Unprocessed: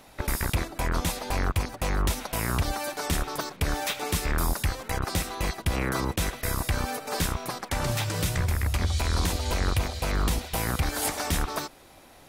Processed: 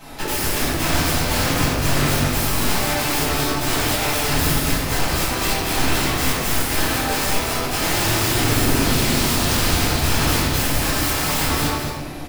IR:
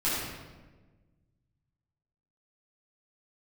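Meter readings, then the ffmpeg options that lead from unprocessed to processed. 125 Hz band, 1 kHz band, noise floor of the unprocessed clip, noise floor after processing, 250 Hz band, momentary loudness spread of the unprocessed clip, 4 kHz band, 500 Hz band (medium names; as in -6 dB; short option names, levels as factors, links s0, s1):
+5.5 dB, +8.5 dB, -52 dBFS, -26 dBFS, +10.5 dB, 3 LU, +12.0 dB, +8.5 dB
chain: -filter_complex "[0:a]asplit=2[s0][s1];[s1]acompressor=threshold=0.0126:ratio=8,volume=1.26[s2];[s0][s2]amix=inputs=2:normalize=0,aeval=exprs='(mod(15*val(0)+1,2)-1)/15':c=same,aecho=1:1:216:0.473[s3];[1:a]atrim=start_sample=2205[s4];[s3][s4]afir=irnorm=-1:irlink=0,volume=0.794"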